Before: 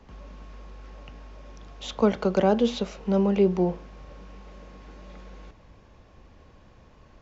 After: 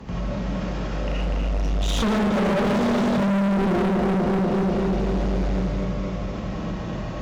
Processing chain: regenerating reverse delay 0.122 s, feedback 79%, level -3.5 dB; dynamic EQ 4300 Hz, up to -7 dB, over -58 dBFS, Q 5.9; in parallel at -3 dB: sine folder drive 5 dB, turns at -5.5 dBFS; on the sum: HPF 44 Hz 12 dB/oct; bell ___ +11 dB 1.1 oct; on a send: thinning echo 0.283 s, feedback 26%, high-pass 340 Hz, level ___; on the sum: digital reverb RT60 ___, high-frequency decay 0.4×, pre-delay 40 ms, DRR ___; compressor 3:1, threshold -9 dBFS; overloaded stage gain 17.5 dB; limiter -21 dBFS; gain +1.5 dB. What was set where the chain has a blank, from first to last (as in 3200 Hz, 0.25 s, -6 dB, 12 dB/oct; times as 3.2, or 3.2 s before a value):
160 Hz, -9 dB, 0.74 s, -6.5 dB